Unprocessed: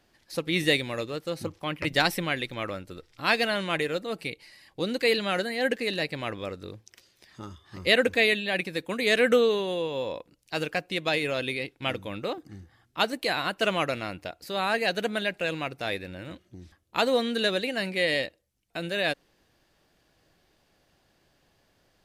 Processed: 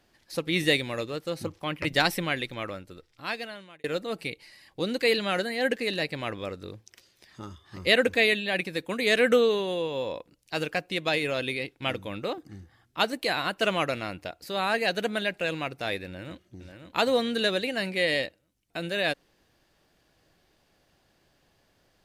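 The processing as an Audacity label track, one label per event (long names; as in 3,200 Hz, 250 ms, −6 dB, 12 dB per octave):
2.370000	3.840000	fade out
16.060000	16.580000	delay throw 540 ms, feedback 35%, level −7.5 dB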